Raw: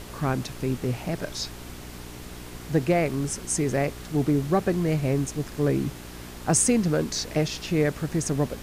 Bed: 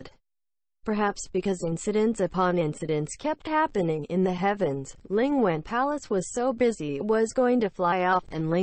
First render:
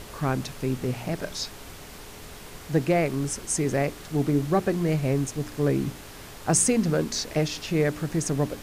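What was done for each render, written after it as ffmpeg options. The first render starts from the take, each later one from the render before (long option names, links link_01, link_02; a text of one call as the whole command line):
ffmpeg -i in.wav -af "bandreject=frequency=60:width_type=h:width=4,bandreject=frequency=120:width_type=h:width=4,bandreject=frequency=180:width_type=h:width=4,bandreject=frequency=240:width_type=h:width=4,bandreject=frequency=300:width_type=h:width=4,bandreject=frequency=360:width_type=h:width=4" out.wav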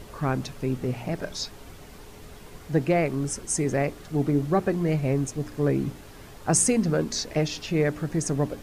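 ffmpeg -i in.wav -af "afftdn=noise_reduction=7:noise_floor=-43" out.wav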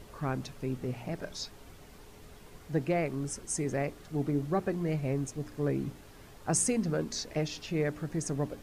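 ffmpeg -i in.wav -af "volume=-7dB" out.wav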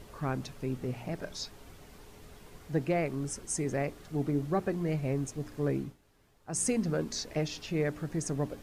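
ffmpeg -i in.wav -filter_complex "[0:a]asplit=3[link_01][link_02][link_03];[link_01]atrim=end=5.97,asetpts=PTS-STARTPTS,afade=type=out:start_time=5.76:duration=0.21:silence=0.188365[link_04];[link_02]atrim=start=5.97:end=6.47,asetpts=PTS-STARTPTS,volume=-14.5dB[link_05];[link_03]atrim=start=6.47,asetpts=PTS-STARTPTS,afade=type=in:duration=0.21:silence=0.188365[link_06];[link_04][link_05][link_06]concat=n=3:v=0:a=1" out.wav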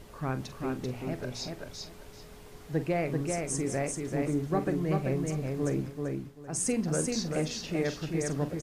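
ffmpeg -i in.wav -filter_complex "[0:a]asplit=2[link_01][link_02];[link_02]adelay=45,volume=-12.5dB[link_03];[link_01][link_03]amix=inputs=2:normalize=0,aecho=1:1:388|776|1164:0.668|0.14|0.0295" out.wav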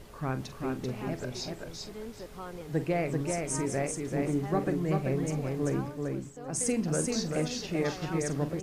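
ffmpeg -i in.wav -i bed.wav -filter_complex "[1:a]volume=-18.5dB[link_01];[0:a][link_01]amix=inputs=2:normalize=0" out.wav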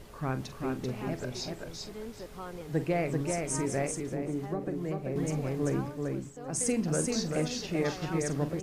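ffmpeg -i in.wav -filter_complex "[0:a]asettb=1/sr,asplit=3[link_01][link_02][link_03];[link_01]atrim=end=4.004[link_04];[link_02]atrim=start=4:end=5.16,asetpts=PTS-STARTPTS,afade=type=in:duration=0.004:curve=qsin,afade=type=out:start_time=1.156:duration=0.004:curve=qsin,acrossover=split=290|730[link_05][link_06][link_07];[link_05]acompressor=threshold=-37dB:ratio=4[link_08];[link_06]acompressor=threshold=-34dB:ratio=4[link_09];[link_07]acompressor=threshold=-49dB:ratio=4[link_10];[link_08][link_09][link_10]amix=inputs=3:normalize=0[link_11];[link_03]atrim=start=5.156[link_12];[link_04][link_11]acrossfade=duration=0.004:curve1=hsin:curve2=qsin[link_13];[link_13][link_12]acrossfade=duration=0.004:curve1=qsin:curve2=hsin" out.wav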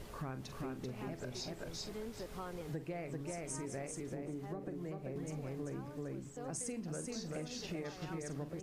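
ffmpeg -i in.wav -af "acompressor=threshold=-40dB:ratio=6" out.wav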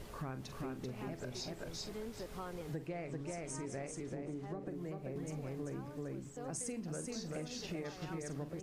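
ffmpeg -i in.wav -filter_complex "[0:a]asettb=1/sr,asplit=3[link_01][link_02][link_03];[link_01]atrim=end=2.874[link_04];[link_02]atrim=start=2.87:end=4.67,asetpts=PTS-STARTPTS,afade=type=in:duration=0.004:curve=qsin,afade=type=out:start_time=1.796:duration=0.004:curve=qsin,lowpass=8500[link_05];[link_03]atrim=start=4.666[link_06];[link_04][link_05]acrossfade=duration=0.004:curve1=hsin:curve2=qsin[link_07];[link_07][link_06]acrossfade=duration=0.004:curve1=qsin:curve2=hsin" out.wav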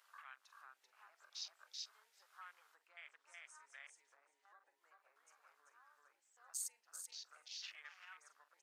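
ffmpeg -i in.wav -af "afwtdn=0.00282,highpass=frequency=1400:width=0.5412,highpass=frequency=1400:width=1.3066" out.wav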